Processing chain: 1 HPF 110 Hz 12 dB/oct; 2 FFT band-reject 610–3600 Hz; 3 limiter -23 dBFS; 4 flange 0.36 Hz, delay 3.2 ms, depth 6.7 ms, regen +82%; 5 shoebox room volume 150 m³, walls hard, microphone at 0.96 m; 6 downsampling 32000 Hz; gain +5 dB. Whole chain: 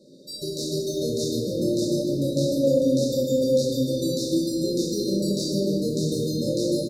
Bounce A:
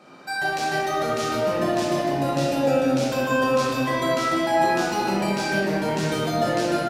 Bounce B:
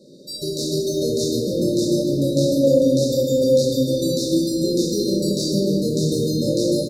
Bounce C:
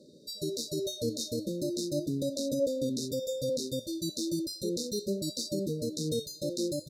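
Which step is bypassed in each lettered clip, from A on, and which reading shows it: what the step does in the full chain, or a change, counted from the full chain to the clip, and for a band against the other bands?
2, 500 Hz band +2.0 dB; 4, loudness change +4.5 LU; 5, momentary loudness spread change -2 LU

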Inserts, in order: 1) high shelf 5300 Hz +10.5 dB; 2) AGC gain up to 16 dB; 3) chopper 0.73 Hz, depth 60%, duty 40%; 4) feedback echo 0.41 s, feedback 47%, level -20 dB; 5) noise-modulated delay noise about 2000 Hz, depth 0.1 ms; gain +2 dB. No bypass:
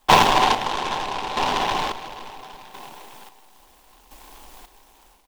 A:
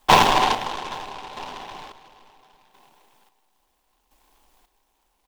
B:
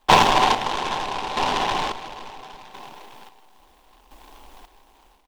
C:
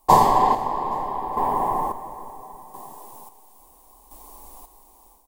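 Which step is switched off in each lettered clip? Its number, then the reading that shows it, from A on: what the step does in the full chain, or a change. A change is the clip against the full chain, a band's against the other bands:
2, crest factor change +1.5 dB; 1, momentary loudness spread change -4 LU; 5, 2 kHz band -15.0 dB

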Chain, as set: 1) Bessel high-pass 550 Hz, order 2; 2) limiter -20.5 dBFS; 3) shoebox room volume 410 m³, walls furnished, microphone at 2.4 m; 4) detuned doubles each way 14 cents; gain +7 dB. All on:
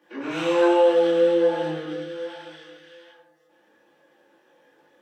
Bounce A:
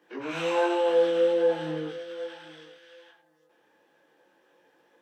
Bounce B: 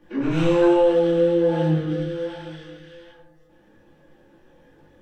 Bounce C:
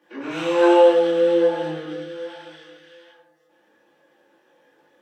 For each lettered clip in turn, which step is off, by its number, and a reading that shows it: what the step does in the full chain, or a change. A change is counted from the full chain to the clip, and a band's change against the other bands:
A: 3, momentary loudness spread change -2 LU; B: 1, 125 Hz band +18.0 dB; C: 2, momentary loudness spread change +3 LU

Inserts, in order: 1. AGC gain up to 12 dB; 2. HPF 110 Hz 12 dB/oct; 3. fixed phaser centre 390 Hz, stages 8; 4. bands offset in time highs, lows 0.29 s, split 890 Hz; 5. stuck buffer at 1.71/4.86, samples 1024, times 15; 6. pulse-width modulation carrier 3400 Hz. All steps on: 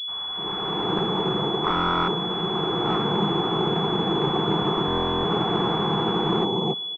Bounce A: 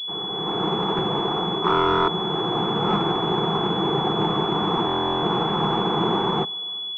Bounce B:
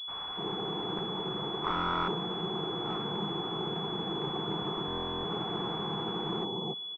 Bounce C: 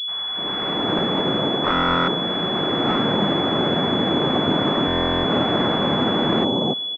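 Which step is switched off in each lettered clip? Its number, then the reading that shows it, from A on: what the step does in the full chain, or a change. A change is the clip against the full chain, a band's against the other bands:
4, momentary loudness spread change +1 LU; 1, 4 kHz band +2.0 dB; 3, 2 kHz band +4.5 dB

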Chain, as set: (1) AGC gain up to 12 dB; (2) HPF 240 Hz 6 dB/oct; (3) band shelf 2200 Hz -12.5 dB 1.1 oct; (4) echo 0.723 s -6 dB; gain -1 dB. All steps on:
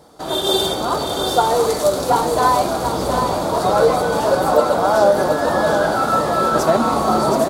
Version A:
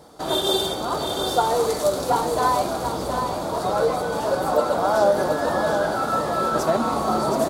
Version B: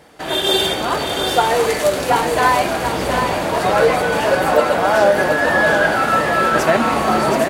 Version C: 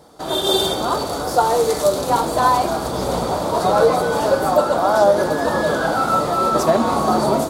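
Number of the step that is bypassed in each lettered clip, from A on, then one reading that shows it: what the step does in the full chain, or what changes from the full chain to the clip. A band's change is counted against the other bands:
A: 1, loudness change -5.0 LU; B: 3, 2 kHz band +9.0 dB; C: 4, momentary loudness spread change +1 LU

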